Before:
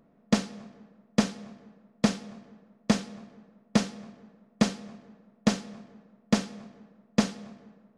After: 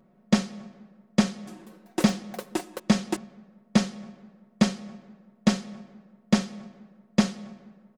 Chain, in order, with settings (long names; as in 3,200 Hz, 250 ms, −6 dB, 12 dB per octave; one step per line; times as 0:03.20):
0:01.28–0:03.81: delay with pitch and tempo change per echo 193 ms, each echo +7 semitones, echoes 3, each echo −6 dB
comb filter 5.4 ms